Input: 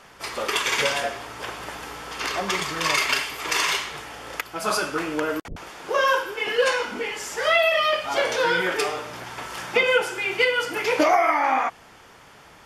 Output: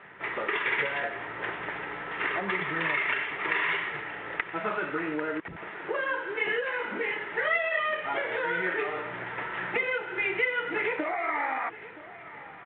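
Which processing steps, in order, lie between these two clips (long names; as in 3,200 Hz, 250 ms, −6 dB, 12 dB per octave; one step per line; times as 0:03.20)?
spectral tilt −2 dB per octave
notch filter 1,100 Hz, Q 13
downward compressor 10 to 1, threshold −25 dBFS, peak gain reduction 12.5 dB
loudspeaker in its box 190–2,800 Hz, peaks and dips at 250 Hz −9 dB, 530 Hz −5 dB, 750 Hz −4 dB, 1,900 Hz +9 dB
on a send: repeating echo 972 ms, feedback 31%, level −17 dB
on the sum: G.726 40 kbit/s 8,000 Hz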